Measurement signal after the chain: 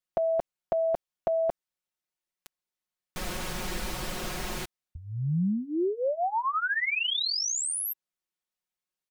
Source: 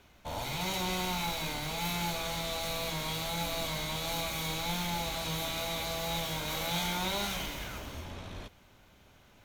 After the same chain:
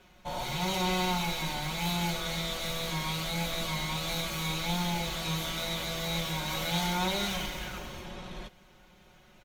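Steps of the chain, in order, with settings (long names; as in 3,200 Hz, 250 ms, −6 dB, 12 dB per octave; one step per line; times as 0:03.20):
high-shelf EQ 8,600 Hz −5 dB
comb filter 5.5 ms, depth 83%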